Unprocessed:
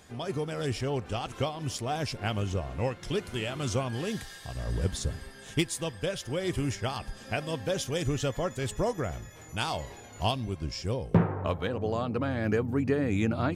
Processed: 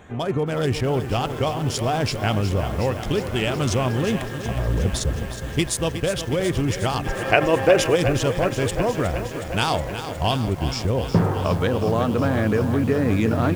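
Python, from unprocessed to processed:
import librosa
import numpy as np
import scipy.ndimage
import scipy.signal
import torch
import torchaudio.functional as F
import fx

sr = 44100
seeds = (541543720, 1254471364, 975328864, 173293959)

p1 = fx.wiener(x, sr, points=9)
p2 = fx.spec_box(p1, sr, start_s=7.07, length_s=0.89, low_hz=300.0, high_hz=3000.0, gain_db=12)
p3 = fx.over_compress(p2, sr, threshold_db=-31.0, ratio=-1.0)
p4 = p2 + F.gain(torch.from_numpy(p3), -0.5).numpy()
p5 = fx.echo_crushed(p4, sr, ms=365, feedback_pct=80, bits=7, wet_db=-10.0)
y = F.gain(torch.from_numpy(p5), 3.0).numpy()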